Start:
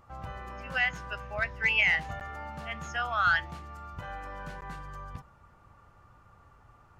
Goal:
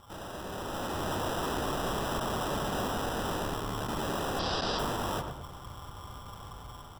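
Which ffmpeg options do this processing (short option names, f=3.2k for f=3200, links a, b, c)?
-filter_complex "[0:a]asettb=1/sr,asplit=3[a][b][c];[a]atrim=end=1.734[d];[b]atrim=start=1.73:end=2.48,asetpts=PTS-STARTPTS,afade=t=in:d=0.004:c=qsin,afade=t=out:st=0.746:d=0.004:c=qsin,bandreject=f=60:t=h:w=6,bandreject=f=120:t=h:w=6,bandreject=f=180:t=h:w=6,bandreject=f=240:t=h:w=6[e];[c]atrim=start=2.476[f];[d][e]acrossfade=d=0.004:c1=hsin:c2=qsin[g];[g][f]acrossfade=d=0.004:c1=qsin:c2=hsin,asoftclip=type=tanh:threshold=-25.5dB,asplit=2[h][i];[i]aecho=0:1:126:0.0794[j];[h][j]amix=inputs=2:normalize=0,asplit=3[k][l][m];[k]afade=t=out:st=3.08:d=0.02[n];[l]aeval=exprs='val(0)*sin(2*PI*35*n/s)':c=same,afade=t=in:st=3.08:d=0.02,afade=t=out:st=3.87:d=0.02[o];[m]afade=t=in:st=3.87:d=0.02[p];[n][o][p]amix=inputs=3:normalize=0,acrusher=samples=20:mix=1:aa=0.000001,aeval=exprs='(mod(106*val(0)+1,2)-1)/106':c=same,asettb=1/sr,asplit=3[q][r][s];[q]atrim=end=4.394[t];[r]atrim=start=4.39:end=4.79,asetpts=PTS-STARTPTS,afade=t=in:d=0.004:c=qsin,afade=t=out:st=0.396:d=0.004:c=qsin,lowpass=f=4.6k:t=q:w=8.3[u];[s]atrim=start=4.786[v];[t][u]acrossfade=d=0.004:c1=hsin:c2=qsin[w];[w][v]acrossfade=d=0.004:c1=qsin:c2=hsin,asplit=2[x][y];[y]adelay=110,lowpass=f=1.6k:p=1,volume=-5dB,asplit=2[z][aa];[aa]adelay=110,lowpass=f=1.6k:p=1,volume=0.43,asplit=2[ab][ac];[ac]adelay=110,lowpass=f=1.6k:p=1,volume=0.43,asplit=2[ad][ae];[ae]adelay=110,lowpass=f=1.6k:p=1,volume=0.43,asplit=2[af][ag];[ag]adelay=110,lowpass=f=1.6k:p=1,volume=0.43[ah];[z][ab][ad][af][ah]amix=inputs=5:normalize=0[ai];[x][ai]amix=inputs=2:normalize=0,dynaudnorm=f=120:g=13:m=9dB,volume=3dB"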